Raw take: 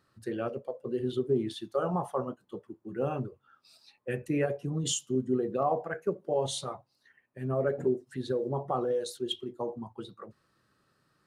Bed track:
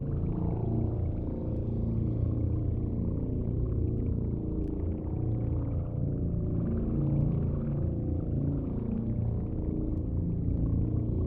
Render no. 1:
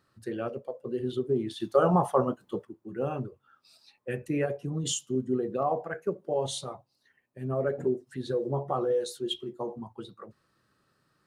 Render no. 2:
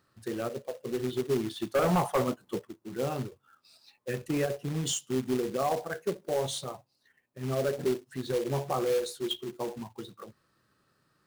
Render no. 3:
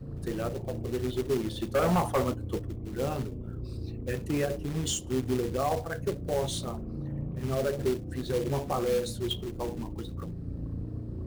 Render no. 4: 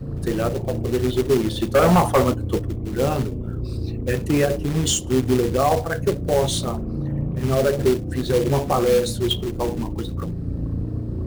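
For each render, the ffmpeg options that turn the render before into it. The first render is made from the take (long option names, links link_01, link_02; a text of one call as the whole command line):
ffmpeg -i in.wav -filter_complex "[0:a]asettb=1/sr,asplit=3[link_01][link_02][link_03];[link_01]atrim=end=6.584[link_04];[link_02]atrim=start=6.58:end=7.52,asetpts=PTS-STARTPTS,afade=type=in:duration=0.004:curve=qsin,afade=type=out:start_time=0.936:duration=0.004:curve=qsin,equalizer=frequency=1600:width_type=o:width=1.2:gain=-5[link_05];[link_03]atrim=start=7.516[link_06];[link_04][link_05]acrossfade=duration=0.004:curve1=hsin:curve2=qsin[link_07];[link_07][link_06]acrossfade=duration=0.004:curve1=qsin:curve2=hsin,asettb=1/sr,asplit=3[link_08][link_09][link_10];[link_08]atrim=end=8.254[link_11];[link_09]atrim=start=8.25:end=9.81,asetpts=PTS-STARTPTS,afade=type=in:duration=0.004:curve=qsin,afade=type=out:start_time=1.556:duration=0.004:curve=qsin,asplit=2[link_12][link_13];[link_13]adelay=14,volume=-6dB[link_14];[link_12][link_14]amix=inputs=2:normalize=0,atrim=end_sample=68796[link_15];[link_10]atrim=start=9.806[link_16];[link_11][link_15]acrossfade=duration=0.004:curve1=hsin:curve2=qsin[link_17];[link_17][link_16]acrossfade=duration=0.004:curve1=qsin:curve2=hsin,asplit=3[link_18][link_19][link_20];[link_18]atrim=end=1.602[link_21];[link_19]atrim=start=1.598:end=2.652,asetpts=PTS-STARTPTS,volume=7.5dB[link_22];[link_20]atrim=start=2.648[link_23];[link_21][link_22]acrossfade=duration=0.004:curve1=hsin:curve2=hsin[link_24];[link_24][link_23]acrossfade=duration=0.004:curve1=hsin:curve2=hsin" out.wav
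ffmpeg -i in.wav -af "asoftclip=type=tanh:threshold=-18.5dB,acrusher=bits=3:mode=log:mix=0:aa=0.000001" out.wav
ffmpeg -i in.wav -i bed.wav -filter_complex "[1:a]volume=-7.5dB[link_01];[0:a][link_01]amix=inputs=2:normalize=0" out.wav
ffmpeg -i in.wav -af "volume=10dB" out.wav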